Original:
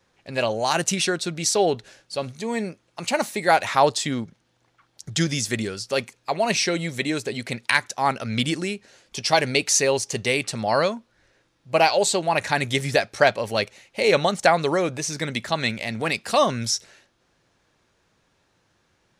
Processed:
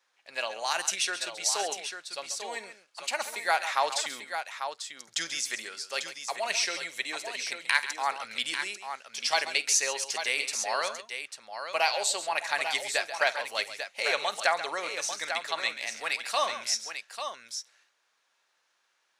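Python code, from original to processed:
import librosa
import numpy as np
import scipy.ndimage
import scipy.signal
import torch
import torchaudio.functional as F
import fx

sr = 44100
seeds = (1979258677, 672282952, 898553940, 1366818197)

p1 = scipy.signal.sosfilt(scipy.signal.butter(2, 930.0, 'highpass', fs=sr, output='sos'), x)
p2 = p1 + fx.echo_multitap(p1, sr, ms=(49, 135, 844), db=(-18.0, -12.5, -8.0), dry=0)
y = p2 * 10.0 ** (-4.5 / 20.0)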